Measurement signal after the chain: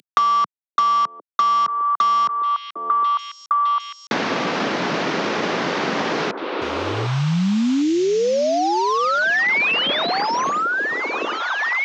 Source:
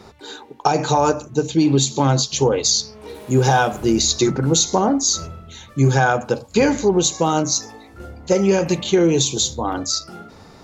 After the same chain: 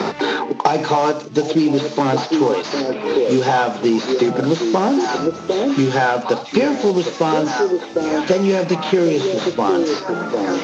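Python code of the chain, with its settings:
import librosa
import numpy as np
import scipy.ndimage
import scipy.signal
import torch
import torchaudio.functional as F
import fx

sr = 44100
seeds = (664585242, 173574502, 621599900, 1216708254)

y = fx.cvsd(x, sr, bps=32000)
y = scipy.signal.sosfilt(scipy.signal.butter(4, 170.0, 'highpass', fs=sr, output='sos'), y)
y = fx.echo_stepped(y, sr, ms=754, hz=410.0, octaves=1.4, feedback_pct=70, wet_db=-5.0)
y = fx.band_squash(y, sr, depth_pct=100)
y = y * librosa.db_to_amplitude(1.5)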